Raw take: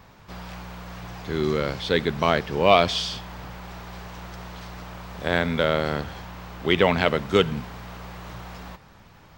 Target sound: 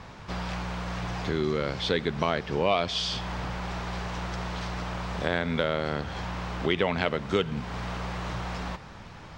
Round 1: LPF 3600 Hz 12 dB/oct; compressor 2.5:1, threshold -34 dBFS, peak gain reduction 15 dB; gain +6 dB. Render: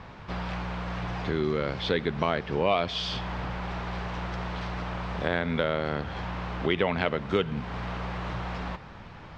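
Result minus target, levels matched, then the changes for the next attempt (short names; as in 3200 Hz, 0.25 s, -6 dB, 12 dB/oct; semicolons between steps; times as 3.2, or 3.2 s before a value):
8000 Hz band -8.5 dB
change: LPF 7500 Hz 12 dB/oct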